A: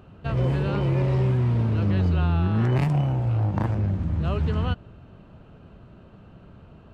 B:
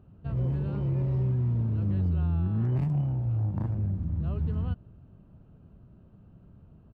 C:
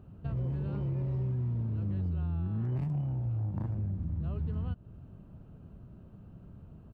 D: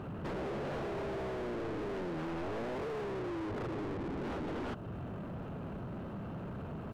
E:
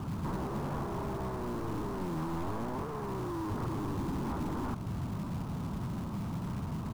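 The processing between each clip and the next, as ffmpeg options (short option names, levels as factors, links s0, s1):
-af "firequalizer=gain_entry='entry(140,0);entry(460,-8);entry(2100,-15)':delay=0.05:min_phase=1,volume=0.596"
-af "acompressor=threshold=0.0141:ratio=2.5,volume=1.41"
-filter_complex "[0:a]aeval=exprs='0.0168*(abs(mod(val(0)/0.0168+3,4)-2)-1)':c=same,asplit=2[s0][s1];[s1]highpass=f=720:p=1,volume=31.6,asoftclip=type=tanh:threshold=0.0168[s2];[s0][s2]amix=inputs=2:normalize=0,lowpass=f=2100:p=1,volume=0.501,volume=1.33"
-filter_complex "[0:a]acrossover=split=330[s0][s1];[s0]acrusher=bits=4:mode=log:mix=0:aa=0.000001[s2];[s1]bandpass=f=1000:t=q:w=3.2:csg=0[s3];[s2][s3]amix=inputs=2:normalize=0,volume=2.24"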